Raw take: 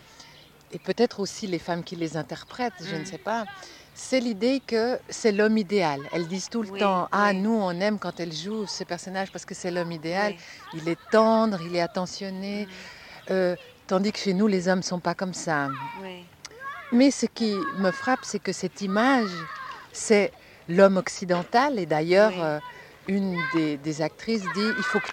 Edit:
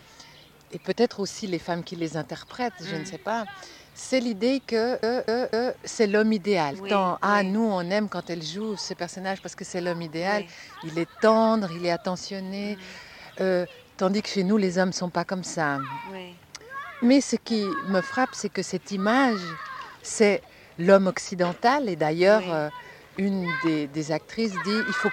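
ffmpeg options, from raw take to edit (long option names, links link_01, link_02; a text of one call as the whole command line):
ffmpeg -i in.wav -filter_complex "[0:a]asplit=5[link_01][link_02][link_03][link_04][link_05];[link_01]atrim=end=5.032[link_06];[link_02]atrim=start=4.778:end=5.032[link_07];[link_03]atrim=start=4.778:end=5.032[link_08];[link_04]atrim=start=4.778:end=5.992[link_09];[link_05]atrim=start=6.638[link_10];[link_06][link_07]acrossfade=duration=0.004:curve1=hsin:curve2=hsin[link_11];[link_11][link_08]acrossfade=duration=0.004:curve1=hsin:curve2=hsin[link_12];[link_12][link_09]acrossfade=duration=0.004:curve1=hsin:curve2=hsin[link_13];[link_13][link_10]acrossfade=duration=0.004:curve1=hsin:curve2=hsin" out.wav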